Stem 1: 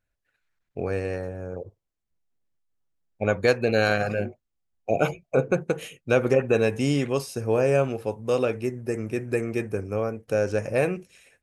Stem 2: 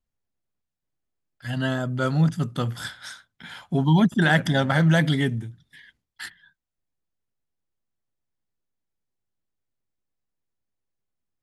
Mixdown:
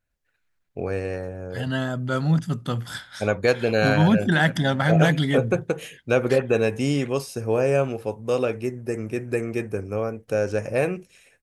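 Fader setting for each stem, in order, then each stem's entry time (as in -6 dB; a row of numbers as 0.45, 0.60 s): +0.5, -0.5 dB; 0.00, 0.10 s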